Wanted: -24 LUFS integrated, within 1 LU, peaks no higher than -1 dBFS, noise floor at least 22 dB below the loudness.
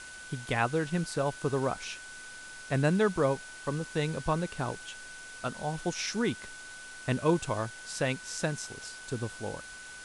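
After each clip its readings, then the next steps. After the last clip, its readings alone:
steady tone 1500 Hz; tone level -45 dBFS; noise floor -46 dBFS; noise floor target -54 dBFS; loudness -32.0 LUFS; peak -12.5 dBFS; loudness target -24.0 LUFS
-> notch 1500 Hz, Q 30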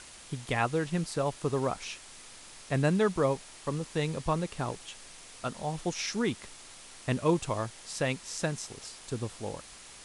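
steady tone none; noise floor -50 dBFS; noise floor target -54 dBFS
-> denoiser 6 dB, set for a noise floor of -50 dBFS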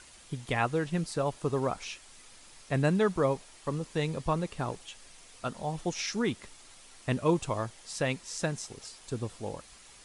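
noise floor -54 dBFS; noise floor target -55 dBFS
-> denoiser 6 dB, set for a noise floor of -54 dBFS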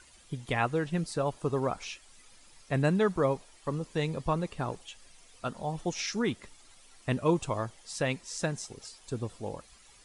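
noise floor -58 dBFS; loudness -32.5 LUFS; peak -12.5 dBFS; loudness target -24.0 LUFS
-> gain +8.5 dB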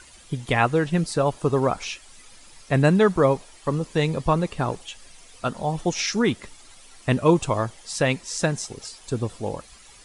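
loudness -24.0 LUFS; peak -4.0 dBFS; noise floor -49 dBFS

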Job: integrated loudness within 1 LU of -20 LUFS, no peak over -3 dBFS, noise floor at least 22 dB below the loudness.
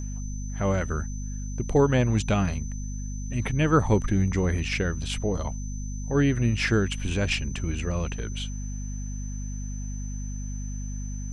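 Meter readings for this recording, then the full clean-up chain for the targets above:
hum 50 Hz; harmonics up to 250 Hz; hum level -30 dBFS; steady tone 6100 Hz; tone level -44 dBFS; loudness -27.5 LUFS; peak -8.5 dBFS; loudness target -20.0 LUFS
-> notches 50/100/150/200/250 Hz; notch 6100 Hz, Q 30; gain +7.5 dB; limiter -3 dBFS

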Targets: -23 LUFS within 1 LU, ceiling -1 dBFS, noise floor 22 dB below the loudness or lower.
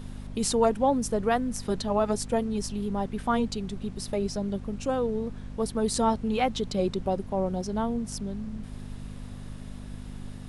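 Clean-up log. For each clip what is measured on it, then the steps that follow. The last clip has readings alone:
hum 50 Hz; harmonics up to 250 Hz; hum level -39 dBFS; noise floor -41 dBFS; noise floor target -51 dBFS; loudness -28.5 LUFS; peak -10.0 dBFS; loudness target -23.0 LUFS
-> de-hum 50 Hz, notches 5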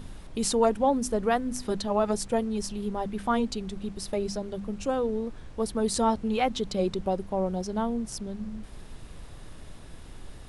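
hum none; noise floor -45 dBFS; noise floor target -51 dBFS
-> noise print and reduce 6 dB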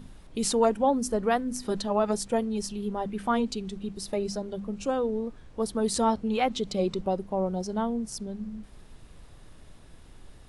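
noise floor -51 dBFS; loudness -29.0 LUFS; peak -10.5 dBFS; loudness target -23.0 LUFS
-> gain +6 dB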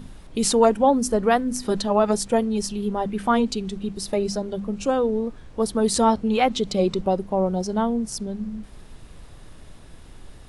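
loudness -23.0 LUFS; peak -4.5 dBFS; noise floor -45 dBFS

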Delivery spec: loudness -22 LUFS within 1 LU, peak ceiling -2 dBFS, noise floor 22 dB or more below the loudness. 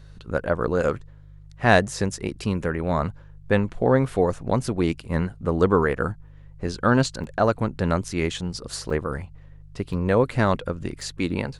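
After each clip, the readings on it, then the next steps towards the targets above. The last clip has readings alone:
dropouts 5; longest dropout 3.7 ms; hum 50 Hz; harmonics up to 150 Hz; hum level -44 dBFS; loudness -24.0 LUFS; peak -3.0 dBFS; loudness target -22.0 LUFS
-> interpolate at 6.67/7.24/8.9/9.93/11.01, 3.7 ms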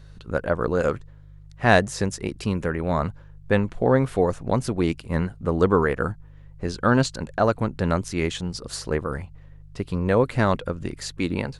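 dropouts 0; hum 50 Hz; harmonics up to 150 Hz; hum level -44 dBFS
-> de-hum 50 Hz, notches 3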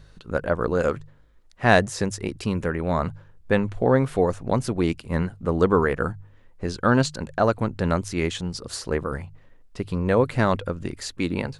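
hum none; loudness -24.5 LUFS; peak -3.5 dBFS; loudness target -22.0 LUFS
-> gain +2.5 dB; limiter -2 dBFS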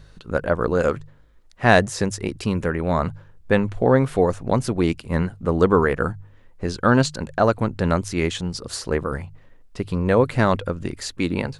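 loudness -22.0 LUFS; peak -2.0 dBFS; noise floor -50 dBFS

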